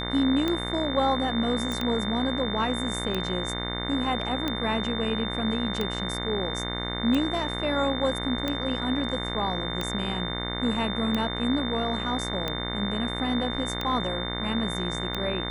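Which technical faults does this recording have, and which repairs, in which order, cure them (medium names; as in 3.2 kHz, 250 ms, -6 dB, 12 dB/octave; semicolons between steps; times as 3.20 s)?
buzz 60 Hz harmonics 37 -33 dBFS
tick 45 rpm -14 dBFS
whine 3.6 kHz -33 dBFS
1.72 s: pop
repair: de-click; de-hum 60 Hz, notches 37; band-stop 3.6 kHz, Q 30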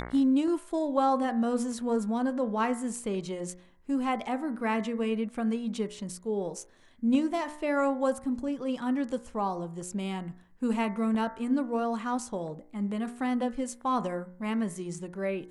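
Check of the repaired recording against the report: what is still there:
nothing left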